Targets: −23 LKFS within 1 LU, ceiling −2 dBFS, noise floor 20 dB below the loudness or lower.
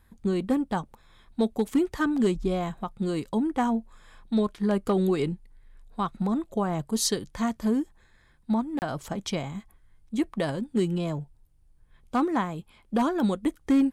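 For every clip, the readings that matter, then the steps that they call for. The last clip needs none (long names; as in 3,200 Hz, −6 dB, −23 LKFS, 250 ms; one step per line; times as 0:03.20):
share of clipped samples 0.3%; peaks flattened at −16.0 dBFS; number of dropouts 1; longest dropout 29 ms; integrated loudness −28.0 LKFS; sample peak −16.0 dBFS; target loudness −23.0 LKFS
→ clipped peaks rebuilt −16 dBFS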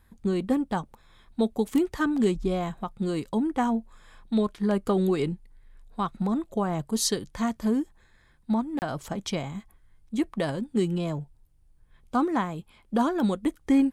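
share of clipped samples 0.0%; number of dropouts 1; longest dropout 29 ms
→ repair the gap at 0:08.79, 29 ms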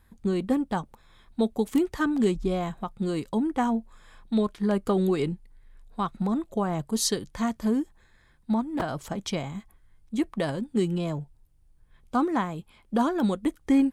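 number of dropouts 0; integrated loudness −28.0 LKFS; sample peak −11.0 dBFS; target loudness −23.0 LKFS
→ level +5 dB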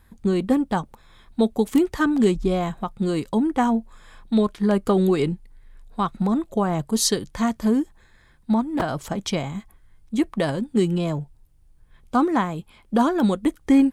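integrated loudness −23.0 LKFS; sample peak −6.0 dBFS; background noise floor −55 dBFS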